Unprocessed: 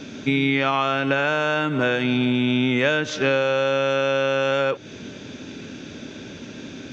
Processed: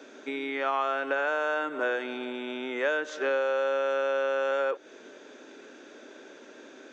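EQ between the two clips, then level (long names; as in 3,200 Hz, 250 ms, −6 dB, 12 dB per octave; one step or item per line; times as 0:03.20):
high-pass filter 360 Hz 24 dB per octave
flat-topped bell 3,700 Hz −8.5 dB
−5.5 dB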